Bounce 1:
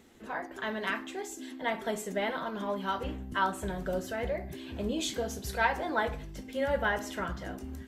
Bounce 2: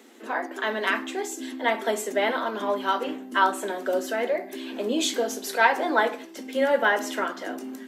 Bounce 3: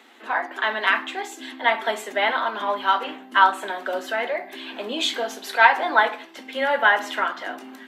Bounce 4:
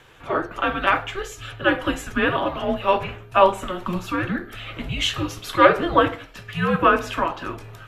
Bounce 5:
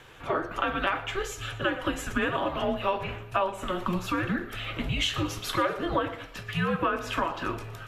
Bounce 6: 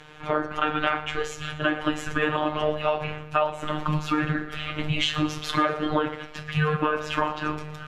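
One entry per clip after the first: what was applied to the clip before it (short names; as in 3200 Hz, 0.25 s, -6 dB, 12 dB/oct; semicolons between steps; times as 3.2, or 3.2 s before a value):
steep high-pass 230 Hz 72 dB/oct; gain +8 dB
band shelf 1700 Hz +11 dB 2.9 oct; gain -5.5 dB
frequency shift -370 Hz; gain +1 dB
compressor 6:1, threshold -24 dBFS, peak gain reduction 15.5 dB; thinning echo 0.117 s, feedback 48%, level -17 dB
robotiser 152 Hz; air absorption 56 m; gain +6 dB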